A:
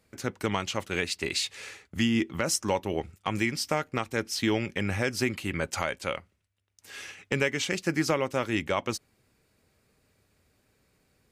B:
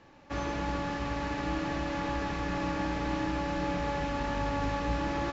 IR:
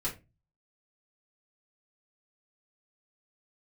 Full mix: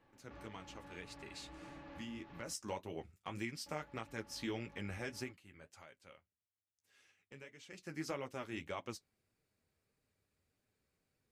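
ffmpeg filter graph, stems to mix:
-filter_complex "[0:a]volume=1.5dB,afade=type=in:start_time=2.27:duration=0.38:silence=0.446684,afade=type=out:start_time=5.16:duration=0.21:silence=0.223872,afade=type=in:start_time=7.63:duration=0.45:silence=0.237137,asplit=2[link_01][link_02];[1:a]lowpass=3900,acompressor=threshold=-35dB:ratio=2.5,asoftclip=type=tanh:threshold=-31.5dB,volume=-10dB,asplit=3[link_03][link_04][link_05];[link_03]atrim=end=2.53,asetpts=PTS-STARTPTS,afade=type=out:start_time=2.526:duration=0.004:curve=hsin[link_06];[link_04]atrim=start=2.53:end=3.66,asetpts=PTS-STARTPTS,volume=0[link_07];[link_05]atrim=start=3.66,asetpts=PTS-STARTPTS,afade=type=in:duration=0.004:curve=hsin[link_08];[link_06][link_07][link_08]concat=n=3:v=0:a=1[link_09];[link_02]apad=whole_len=234708[link_10];[link_09][link_10]sidechaincompress=threshold=-47dB:ratio=8:attack=44:release=390[link_11];[link_01][link_11]amix=inputs=2:normalize=0,flanger=delay=6.1:depth=8.7:regen=-38:speed=1.7:shape=triangular"

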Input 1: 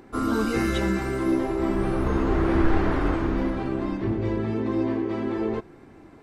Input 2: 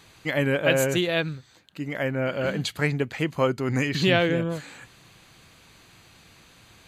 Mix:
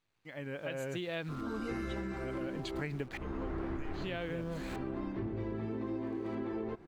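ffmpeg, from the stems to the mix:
ffmpeg -i stem1.wav -i stem2.wav -filter_complex "[0:a]adelay=1150,volume=-2dB[link_01];[1:a]acrusher=bits=8:dc=4:mix=0:aa=0.000001,aeval=exprs='val(0)*pow(10,-27*if(lt(mod(-0.63*n/s,1),2*abs(-0.63)/1000),1-mod(-0.63*n/s,1)/(2*abs(-0.63)/1000),(mod(-0.63*n/s,1)-2*abs(-0.63)/1000)/(1-2*abs(-0.63)/1000))/20)':channel_layout=same,volume=1.5dB,asplit=2[link_02][link_03];[link_03]apad=whole_len=325239[link_04];[link_01][link_04]sidechaincompress=threshold=-42dB:ratio=4:attack=16:release=457[link_05];[link_05][link_02]amix=inputs=2:normalize=0,highshelf=frequency=6400:gain=-12,acompressor=threshold=-35dB:ratio=6" out.wav

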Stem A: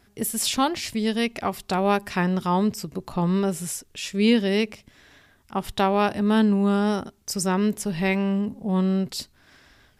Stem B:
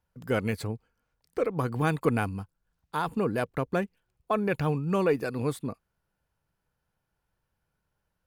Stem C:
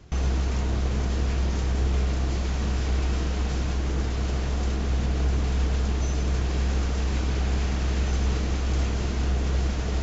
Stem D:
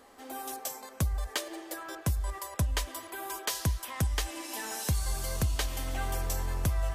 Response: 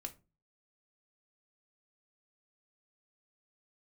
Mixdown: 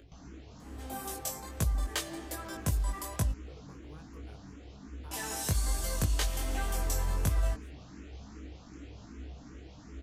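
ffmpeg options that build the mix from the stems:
-filter_complex "[1:a]acompressor=threshold=-28dB:ratio=6,adelay=2100,volume=-19.5dB[link_01];[2:a]equalizer=frequency=280:width_type=o:width=0.3:gain=12.5,acompressor=mode=upward:threshold=-25dB:ratio=2.5,asplit=2[link_02][link_03];[link_03]afreqshift=2.6[link_04];[link_02][link_04]amix=inputs=2:normalize=1,volume=-15.5dB[link_05];[3:a]equalizer=frequency=7800:width_type=o:width=0.95:gain=3,adelay=600,volume=2dB,asplit=3[link_06][link_07][link_08];[link_06]atrim=end=3.32,asetpts=PTS-STARTPTS,afade=type=out:start_time=3.316:duration=0.004:curve=hsin[link_09];[link_07]atrim=start=3.32:end=5.11,asetpts=PTS-STARTPTS,volume=0[link_10];[link_08]atrim=start=5.11,asetpts=PTS-STARTPTS,afade=type=in:duration=0.004:curve=hsin[link_11];[link_09][link_10][link_11]concat=n=3:v=0:a=1[link_12];[link_01][link_05][link_12]amix=inputs=3:normalize=0,flanger=delay=18.5:depth=2.9:speed=1.2"

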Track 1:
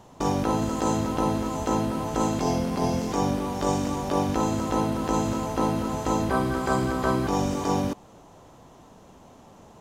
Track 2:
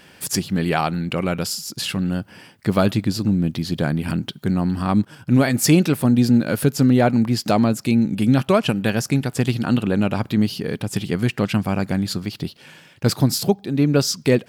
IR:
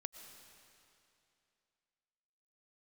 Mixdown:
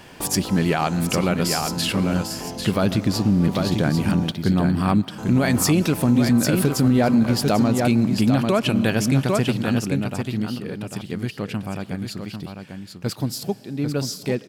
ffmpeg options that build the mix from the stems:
-filter_complex "[0:a]acompressor=threshold=-33dB:ratio=6,volume=-1dB,asplit=3[link_01][link_02][link_03];[link_01]atrim=end=4.32,asetpts=PTS-STARTPTS,afade=type=out:start_time=4.316:duration=0.004:curve=hsin[link_04];[link_02]atrim=start=4.32:end=5.18,asetpts=PTS-STARTPTS,volume=0[link_05];[link_03]atrim=start=5.18,asetpts=PTS-STARTPTS,afade=type=in:duration=0.004:curve=hsin[link_06];[link_04][link_05][link_06]concat=n=3:v=0:a=1,asplit=2[link_07][link_08];[link_08]volume=-3.5dB[link_09];[1:a]volume=-1dB,afade=type=out:start_time=9.19:duration=0.76:silence=0.354813,asplit=3[link_10][link_11][link_12];[link_11]volume=-6dB[link_13];[link_12]volume=-4.5dB[link_14];[2:a]atrim=start_sample=2205[link_15];[link_09][link_13]amix=inputs=2:normalize=0[link_16];[link_16][link_15]afir=irnorm=-1:irlink=0[link_17];[link_14]aecho=0:1:796:1[link_18];[link_07][link_10][link_17][link_18]amix=inputs=4:normalize=0,alimiter=limit=-9.5dB:level=0:latency=1:release=69"

